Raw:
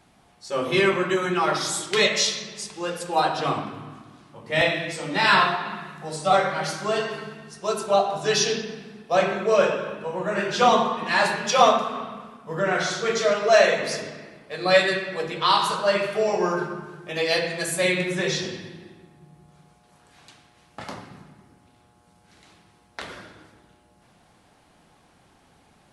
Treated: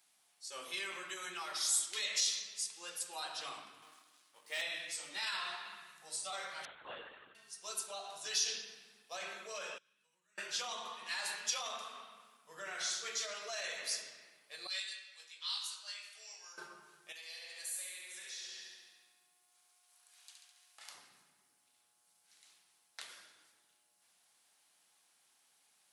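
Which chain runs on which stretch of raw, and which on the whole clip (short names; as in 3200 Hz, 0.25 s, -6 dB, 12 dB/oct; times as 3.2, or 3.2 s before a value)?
3.82–4.61 HPF 270 Hz + comb 6.5 ms, depth 31% + sample leveller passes 1
6.65–7.35 high shelf 3000 Hz -11.5 dB + LPC vocoder at 8 kHz whisper
9.78–10.38 passive tone stack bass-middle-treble 6-0-2 + compressor 10:1, threshold -53 dBFS
14.67–16.58 LPF 5700 Hz + differentiator + doubler 21 ms -5 dB
17.12–20.95 HPF 820 Hz 6 dB/oct + compressor 10:1, threshold -35 dBFS + flutter echo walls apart 11.9 m, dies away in 1 s
whole clip: limiter -15 dBFS; differentiator; gain -3 dB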